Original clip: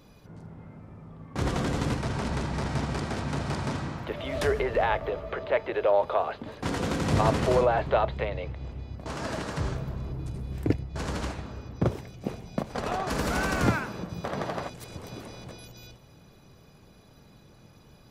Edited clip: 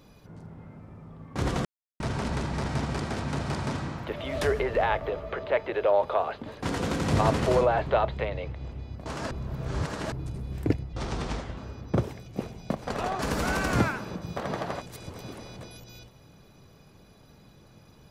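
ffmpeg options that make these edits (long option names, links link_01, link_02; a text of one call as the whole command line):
ffmpeg -i in.wav -filter_complex "[0:a]asplit=7[link_01][link_02][link_03][link_04][link_05][link_06][link_07];[link_01]atrim=end=1.65,asetpts=PTS-STARTPTS,afade=type=out:start_time=1.646:duration=0.004:curve=hsin[link_08];[link_02]atrim=start=1.65:end=2,asetpts=PTS-STARTPTS,volume=0[link_09];[link_03]atrim=start=2:end=9.312,asetpts=PTS-STARTPTS,afade=type=in:duration=0.004:curve=hsin[link_10];[link_04]atrim=start=9.308:end=10.122,asetpts=PTS-STARTPTS,areverse[link_11];[link_05]atrim=start=10.118:end=10.934[link_12];[link_06]atrim=start=10.93:end=11.45,asetpts=PTS-STARTPTS,asetrate=35721,aresample=44100,atrim=end_sample=28311,asetpts=PTS-STARTPTS[link_13];[link_07]atrim=start=11.446[link_14];[link_08][link_09][link_10]concat=n=3:v=0:a=1[link_15];[link_15][link_11]acrossfade=duration=0.004:curve1=hsin:curve2=hsin[link_16];[link_16][link_12]acrossfade=duration=0.004:curve1=hsin:curve2=hsin[link_17];[link_17][link_13]acrossfade=duration=0.004:curve1=hsin:curve2=hsin[link_18];[link_18][link_14]acrossfade=duration=0.004:curve1=hsin:curve2=hsin" out.wav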